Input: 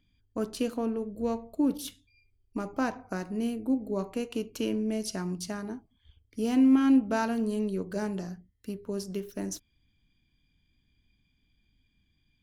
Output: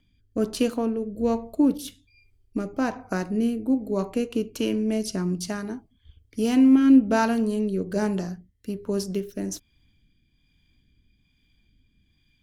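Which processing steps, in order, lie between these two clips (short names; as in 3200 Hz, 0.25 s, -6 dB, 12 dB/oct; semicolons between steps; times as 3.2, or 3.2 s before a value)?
rotary speaker horn 1.2 Hz; gain +7.5 dB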